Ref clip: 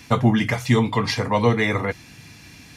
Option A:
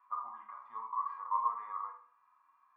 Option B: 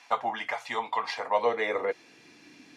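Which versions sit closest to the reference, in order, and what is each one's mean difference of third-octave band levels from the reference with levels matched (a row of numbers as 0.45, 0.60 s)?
B, A; 7.0, 19.5 dB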